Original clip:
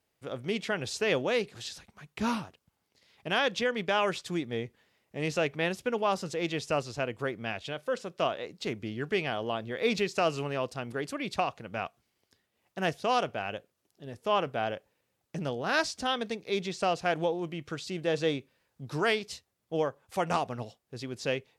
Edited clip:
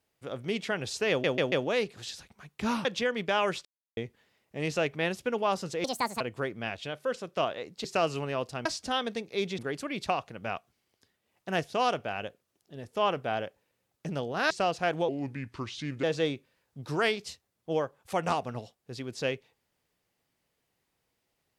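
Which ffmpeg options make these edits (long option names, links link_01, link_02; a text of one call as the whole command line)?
ffmpeg -i in.wav -filter_complex "[0:a]asplit=15[link_01][link_02][link_03][link_04][link_05][link_06][link_07][link_08][link_09][link_10][link_11][link_12][link_13][link_14][link_15];[link_01]atrim=end=1.242[link_16];[link_02]atrim=start=1.098:end=1.242[link_17];[link_03]atrim=start=1.098:end=1.242[link_18];[link_04]atrim=start=1.098:end=2.432[link_19];[link_05]atrim=start=3.448:end=4.25,asetpts=PTS-STARTPTS,afade=type=out:start_time=0.798:duration=0.004:curve=hsin[link_20];[link_06]atrim=start=4.25:end=4.57,asetpts=PTS-STARTPTS,volume=0[link_21];[link_07]atrim=start=4.57:end=6.444,asetpts=PTS-STARTPTS,afade=type=in:duration=0.004:curve=hsin[link_22];[link_08]atrim=start=6.44:end=7.03,asetpts=PTS-STARTPTS,asetrate=71442,aresample=44100,atrim=end_sample=16061,asetpts=PTS-STARTPTS[link_23];[link_09]atrim=start=7.026:end=8.672[link_24];[link_10]atrim=start=10.068:end=10.882[link_25];[link_11]atrim=start=15.798:end=16.732[link_26];[link_12]atrim=start=10.878:end=15.802[link_27];[link_13]atrim=start=16.728:end=17.314[link_28];[link_14]atrim=start=17.31:end=18.07,asetpts=PTS-STARTPTS,asetrate=35280,aresample=44100[link_29];[link_15]atrim=start=18.066[link_30];[link_16][link_17]acrossfade=duration=0.004:curve1=hsin:curve2=hsin[link_31];[link_31][link_18]acrossfade=duration=0.004:curve1=hsin:curve2=hsin[link_32];[link_32][link_19]acrossfade=duration=0.004:curve1=hsin:curve2=hsin[link_33];[link_20][link_21][link_22]concat=n=3:v=0:a=1[link_34];[link_33][link_34]acrossfade=duration=0.004:curve1=hsin:curve2=hsin[link_35];[link_35][link_23]acrossfade=duration=0.004:curve1=hsin:curve2=hsin[link_36];[link_36][link_24]acrossfade=duration=0.004:curve1=hsin:curve2=hsin[link_37];[link_37][link_25]acrossfade=duration=0.004:curve1=hsin:curve2=hsin[link_38];[link_38][link_26]acrossfade=duration=0.004:curve1=hsin:curve2=hsin[link_39];[link_39][link_27]acrossfade=duration=0.004:curve1=hsin:curve2=hsin[link_40];[link_40][link_28]acrossfade=duration=0.004:curve1=hsin:curve2=hsin[link_41];[link_41][link_29]acrossfade=duration=0.004:curve1=hsin:curve2=hsin[link_42];[link_42][link_30]acrossfade=duration=0.004:curve1=hsin:curve2=hsin" out.wav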